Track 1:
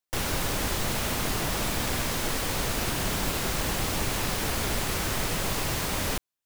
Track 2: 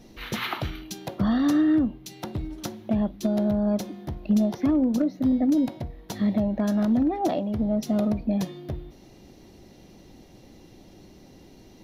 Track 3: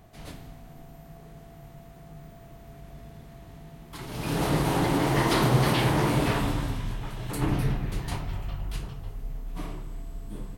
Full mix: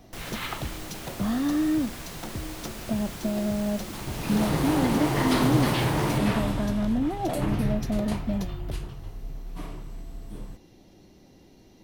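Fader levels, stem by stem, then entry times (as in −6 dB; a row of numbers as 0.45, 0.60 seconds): −11.0, −4.0, −1.5 decibels; 0.00, 0.00, 0.00 seconds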